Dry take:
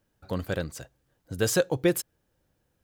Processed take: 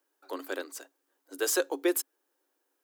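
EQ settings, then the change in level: rippled Chebyshev high-pass 270 Hz, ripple 6 dB; treble shelf 5.9 kHz +9.5 dB; 0.0 dB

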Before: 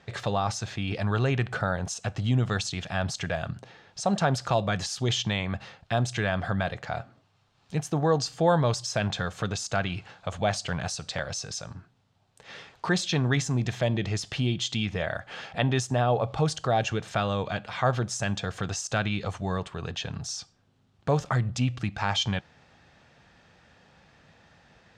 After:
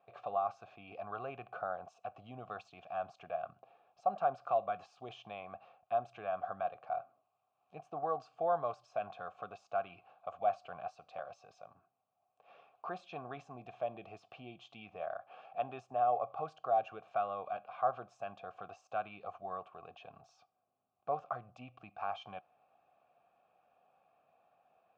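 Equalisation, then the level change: vowel filter a; treble shelf 2.2 kHz -12 dB; dynamic bell 1.4 kHz, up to +6 dB, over -56 dBFS, Q 2.6; 0.0 dB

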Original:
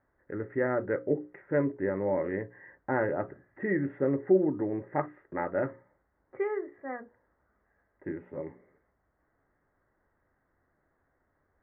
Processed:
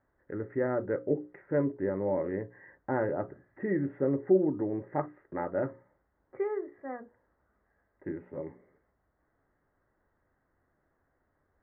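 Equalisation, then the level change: dynamic bell 2.1 kHz, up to -5 dB, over -48 dBFS, Q 1.1; distance through air 260 m; 0.0 dB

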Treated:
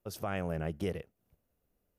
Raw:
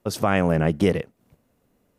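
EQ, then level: graphic EQ 125/250/500/1000/2000/4000/8000 Hz -8/-11/-5/-9/-7/-7/-8 dB; -5.0 dB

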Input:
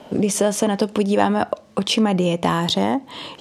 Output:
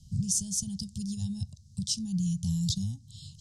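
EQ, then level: inverse Chebyshev band-stop 290–2300 Hz, stop band 50 dB; low-pass 8.1 kHz 12 dB/octave; bass shelf 470 Hz +9.5 dB; 0.0 dB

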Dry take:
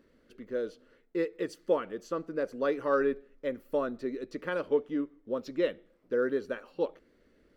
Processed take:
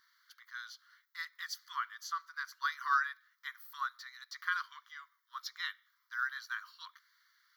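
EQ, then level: brick-wall FIR high-pass 940 Hz; treble shelf 4.9 kHz +12 dB; static phaser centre 2.6 kHz, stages 6; +4.0 dB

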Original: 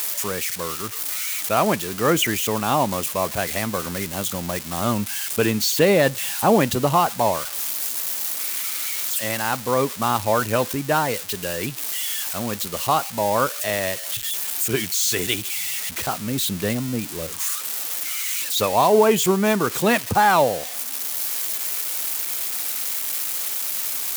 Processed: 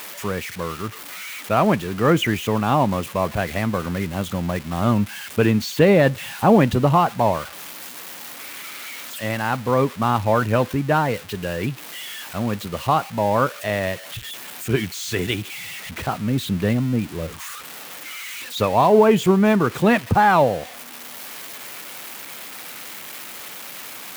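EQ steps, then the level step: tone controls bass +6 dB, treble -13 dB; +1.0 dB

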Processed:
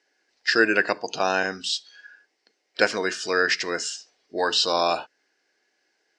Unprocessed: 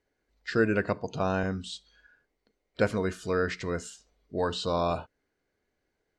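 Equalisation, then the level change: cabinet simulation 330–7600 Hz, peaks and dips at 330 Hz +5 dB, 790 Hz +6 dB, 1.7 kHz +9 dB, 2.7 kHz +6 dB, 5.2 kHz +10 dB; treble shelf 2.9 kHz +11.5 dB; +2.5 dB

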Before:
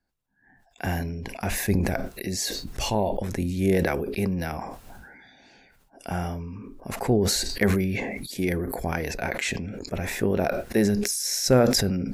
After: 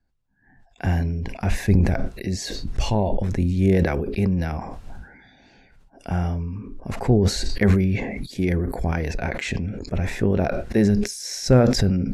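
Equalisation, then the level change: distance through air 57 m; bass shelf 160 Hz +11.5 dB; 0.0 dB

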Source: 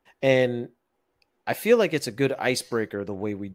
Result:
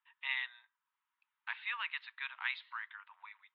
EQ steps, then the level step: Chebyshev band-pass 940–3800 Hz, order 5; -7.0 dB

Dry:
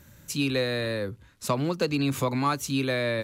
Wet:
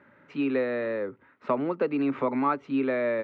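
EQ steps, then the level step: cabinet simulation 250–2400 Hz, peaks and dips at 260 Hz +7 dB, 410 Hz +6 dB, 600 Hz +5 dB, 890 Hz +6 dB, 1.3 kHz +9 dB, 2 kHz +6 dB; dynamic bell 1.5 kHz, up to -5 dB, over -34 dBFS, Q 0.77; -2.5 dB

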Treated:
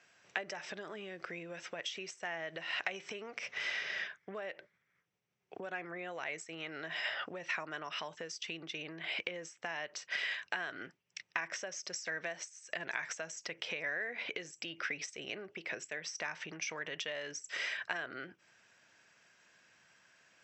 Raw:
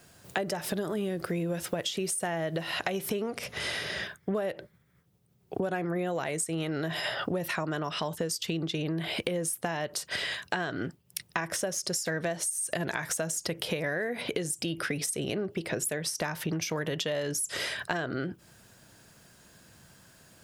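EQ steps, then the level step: high-pass 780 Hz 6 dB/octave; rippled Chebyshev low-pass 7.9 kHz, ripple 9 dB; distance through air 98 m; +1.5 dB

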